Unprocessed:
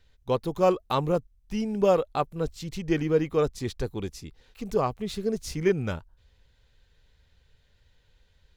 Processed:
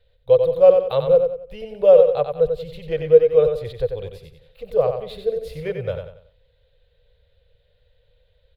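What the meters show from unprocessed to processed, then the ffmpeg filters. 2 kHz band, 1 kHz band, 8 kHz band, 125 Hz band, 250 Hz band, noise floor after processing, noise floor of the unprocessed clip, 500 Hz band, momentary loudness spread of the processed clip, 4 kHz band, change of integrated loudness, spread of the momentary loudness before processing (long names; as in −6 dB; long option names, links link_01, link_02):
−2.0 dB, −0.5 dB, below −10 dB, −0.5 dB, −8.5 dB, −62 dBFS, −64 dBFS, +11.0 dB, 16 LU, can't be measured, +9.5 dB, 13 LU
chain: -filter_complex "[0:a]firequalizer=gain_entry='entry(150,0);entry(230,-20);entry(350,-15);entry(490,15);entry(860,-6);entry(3800,1);entry(5900,-21);entry(11000,-6)':delay=0.05:min_phase=1,asplit=2[link_01][link_02];[link_02]aecho=0:1:92|184|276|368:0.473|0.166|0.058|0.0203[link_03];[link_01][link_03]amix=inputs=2:normalize=0"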